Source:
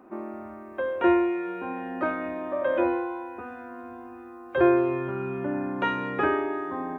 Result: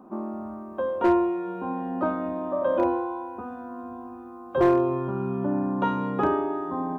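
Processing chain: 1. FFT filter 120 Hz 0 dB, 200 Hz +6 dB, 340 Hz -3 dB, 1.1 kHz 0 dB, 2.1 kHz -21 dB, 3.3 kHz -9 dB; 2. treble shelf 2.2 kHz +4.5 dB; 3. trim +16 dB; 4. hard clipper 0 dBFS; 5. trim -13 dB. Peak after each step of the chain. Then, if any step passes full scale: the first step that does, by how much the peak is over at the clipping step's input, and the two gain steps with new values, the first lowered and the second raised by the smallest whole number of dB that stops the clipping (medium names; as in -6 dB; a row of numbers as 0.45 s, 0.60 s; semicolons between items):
-11.5 dBFS, -11.0 dBFS, +5.0 dBFS, 0.0 dBFS, -13.0 dBFS; step 3, 5.0 dB; step 3 +11 dB, step 5 -8 dB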